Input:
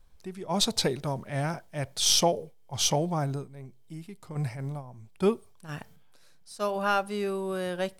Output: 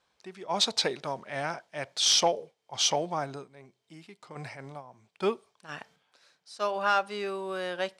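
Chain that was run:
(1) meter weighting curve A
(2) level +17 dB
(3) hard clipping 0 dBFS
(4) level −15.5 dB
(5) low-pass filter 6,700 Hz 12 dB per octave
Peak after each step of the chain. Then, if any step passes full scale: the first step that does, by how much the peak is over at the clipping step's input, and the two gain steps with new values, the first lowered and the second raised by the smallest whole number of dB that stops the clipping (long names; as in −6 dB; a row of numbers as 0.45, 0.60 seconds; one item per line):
−9.5, +7.5, 0.0, −15.5, −14.5 dBFS
step 2, 7.5 dB
step 2 +9 dB, step 4 −7.5 dB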